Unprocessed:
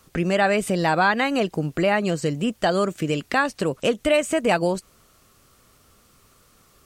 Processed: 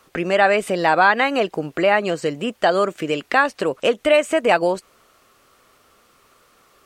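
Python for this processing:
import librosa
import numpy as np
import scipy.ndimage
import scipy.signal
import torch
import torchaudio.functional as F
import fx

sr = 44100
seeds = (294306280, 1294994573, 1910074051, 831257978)

y = fx.bass_treble(x, sr, bass_db=-14, treble_db=-8)
y = y * 10.0 ** (5.0 / 20.0)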